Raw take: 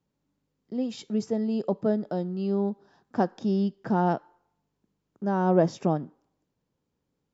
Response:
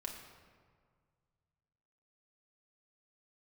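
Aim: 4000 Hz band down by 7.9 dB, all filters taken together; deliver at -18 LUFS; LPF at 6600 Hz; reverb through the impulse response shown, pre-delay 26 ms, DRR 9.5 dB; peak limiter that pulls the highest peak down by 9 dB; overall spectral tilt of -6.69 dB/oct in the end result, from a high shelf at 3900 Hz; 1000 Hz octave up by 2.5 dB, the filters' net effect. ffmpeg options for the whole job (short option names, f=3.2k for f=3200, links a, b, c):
-filter_complex "[0:a]lowpass=6.6k,equalizer=f=1k:t=o:g=4,highshelf=f=3.9k:g=-4.5,equalizer=f=4k:t=o:g=-7,alimiter=limit=-17dB:level=0:latency=1,asplit=2[a][b];[1:a]atrim=start_sample=2205,adelay=26[c];[b][c]afir=irnorm=-1:irlink=0,volume=-8dB[d];[a][d]amix=inputs=2:normalize=0,volume=10.5dB"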